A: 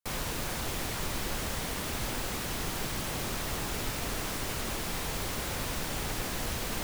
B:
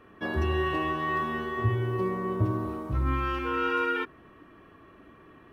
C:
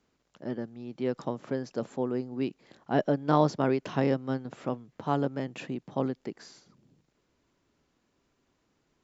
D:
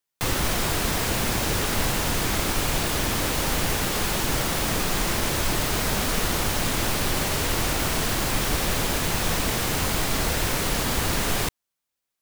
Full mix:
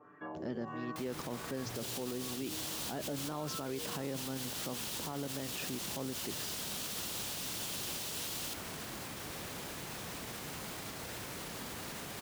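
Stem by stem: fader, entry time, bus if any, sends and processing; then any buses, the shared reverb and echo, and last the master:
−1.0 dB, 1.70 s, bus B, no send, Butterworth high-pass 2,700 Hz 48 dB per octave
−7.5 dB, 0.00 s, bus A, no send, comb filter 6.8 ms, depth 86%; auto-filter low-pass sine 1.5 Hz 400–1,700 Hz; automatic ducking −7 dB, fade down 0.35 s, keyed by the third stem
−1.0 dB, 0.00 s, bus B, no send, downward expander −59 dBFS; high-shelf EQ 3,500 Hz +7.5 dB
−14.0 dB, 0.75 s, bus A, no send, sub-octave generator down 2 octaves, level +2 dB
bus A: 0.0 dB, high-pass filter 120 Hz 12 dB per octave; brickwall limiter −34 dBFS, peak gain reduction 10 dB
bus B: 0.0 dB, brickwall limiter −20 dBFS, peak gain reduction 9 dB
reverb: not used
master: brickwall limiter −29.5 dBFS, peak gain reduction 10.5 dB

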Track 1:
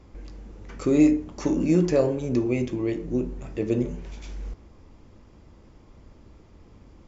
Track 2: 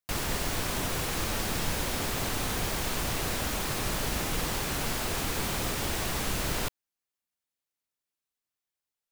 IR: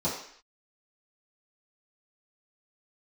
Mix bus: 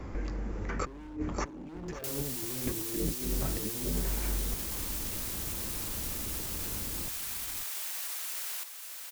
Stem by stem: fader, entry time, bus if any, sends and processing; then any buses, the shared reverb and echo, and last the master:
+0.5 dB, 0.00 s, no send, echo send −15 dB, high shelf with overshoot 2,400 Hz −10 dB, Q 1.5; hard clipping −23.5 dBFS, distortion −6 dB; compressor whose output falls as the input rises −34 dBFS, ratio −0.5
+2.5 dB, 1.95 s, no send, echo send −8.5 dB, high-pass filter 450 Hz 12 dB per octave; first difference; brickwall limiter −31 dBFS, peak gain reduction 10.5 dB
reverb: not used
echo: single-tap delay 547 ms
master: multiband upward and downward compressor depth 40%

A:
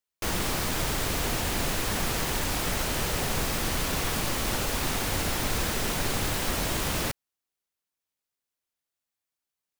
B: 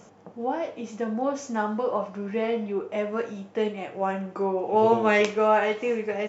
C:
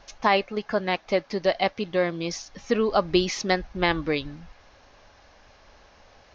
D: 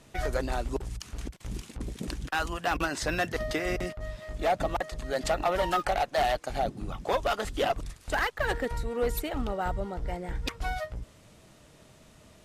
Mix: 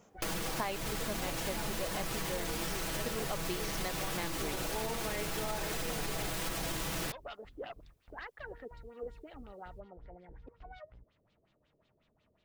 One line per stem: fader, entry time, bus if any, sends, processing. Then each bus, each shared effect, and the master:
+2.0 dB, 0.00 s, no send, brickwall limiter −24.5 dBFS, peak gain reduction 9 dB; comb filter 6.1 ms
−12.0 dB, 0.00 s, no send, no processing
+2.5 dB, 0.35 s, no send, automatic ducking −12 dB, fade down 1.20 s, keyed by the second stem
−19.5 dB, 0.00 s, no send, auto-filter low-pass sine 5.5 Hz 410–4,000 Hz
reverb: not used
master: downward compressor 5 to 1, threshold −33 dBFS, peak gain reduction 13 dB

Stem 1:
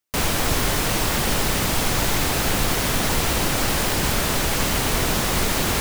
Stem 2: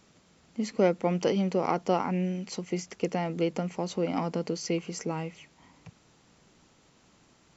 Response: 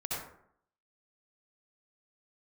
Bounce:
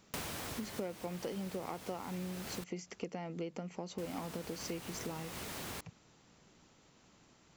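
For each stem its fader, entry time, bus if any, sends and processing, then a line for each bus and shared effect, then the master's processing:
−7.5 dB, 0.00 s, muted 0:02.64–0:03.98, no send, high-pass filter 78 Hz; automatic ducking −12 dB, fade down 0.65 s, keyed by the second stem
−3.0 dB, 0.00 s, no send, no processing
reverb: not used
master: downward compressor 4 to 1, threshold −39 dBFS, peak gain reduction 15.5 dB

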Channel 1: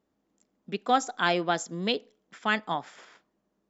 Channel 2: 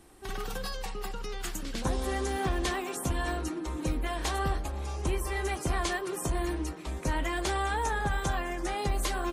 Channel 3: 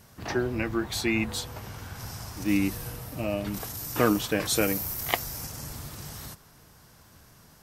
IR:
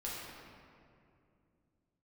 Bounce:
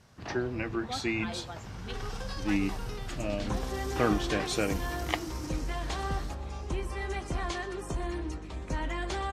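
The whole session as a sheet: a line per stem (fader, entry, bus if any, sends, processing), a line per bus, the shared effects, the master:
−13.5 dB, 0.00 s, no send, no echo send, spectral dynamics exaggerated over time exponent 2
−3.5 dB, 1.65 s, no send, echo send −15.5 dB, mains hum 50 Hz, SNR 10 dB
−4.0 dB, 0.00 s, no send, no echo send, no processing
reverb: not used
echo: single-tap delay 124 ms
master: low-pass filter 6,200 Hz 12 dB per octave; hum removal 223.4 Hz, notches 37

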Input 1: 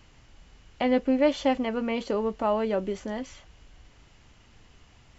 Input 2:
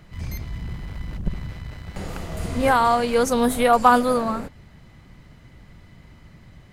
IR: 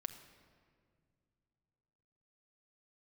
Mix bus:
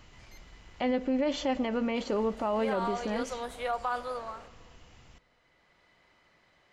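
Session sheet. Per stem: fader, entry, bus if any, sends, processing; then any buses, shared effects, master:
−2.0 dB, 0.00 s, send −8 dB, no processing
−10.0 dB, 0.00 s, send −7.5 dB, three-way crossover with the lows and the highs turned down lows −23 dB, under 390 Hz, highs −16 dB, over 7,300 Hz; automatic ducking −8 dB, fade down 0.25 s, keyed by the first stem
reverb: on, RT60 2.2 s, pre-delay 5 ms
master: brickwall limiter −21 dBFS, peak gain reduction 10 dB

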